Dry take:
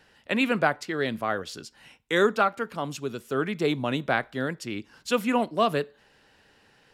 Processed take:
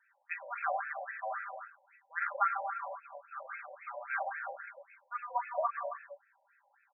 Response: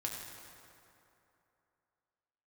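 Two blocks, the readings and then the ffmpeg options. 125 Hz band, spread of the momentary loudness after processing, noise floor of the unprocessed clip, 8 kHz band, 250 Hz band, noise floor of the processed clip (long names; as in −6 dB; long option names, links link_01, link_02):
below −40 dB, 16 LU, −61 dBFS, below −35 dB, below −40 dB, −73 dBFS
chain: -filter_complex "[0:a]aecho=1:1:5.1:1[link_01];[1:a]atrim=start_sample=2205,afade=type=out:start_time=0.41:duration=0.01,atrim=end_sample=18522[link_02];[link_01][link_02]afir=irnorm=-1:irlink=0,afftfilt=real='re*between(b*sr/1024,670*pow(1900/670,0.5+0.5*sin(2*PI*3.7*pts/sr))/1.41,670*pow(1900/670,0.5+0.5*sin(2*PI*3.7*pts/sr))*1.41)':imag='im*between(b*sr/1024,670*pow(1900/670,0.5+0.5*sin(2*PI*3.7*pts/sr))/1.41,670*pow(1900/670,0.5+0.5*sin(2*PI*3.7*pts/sr))*1.41)':win_size=1024:overlap=0.75,volume=-8dB"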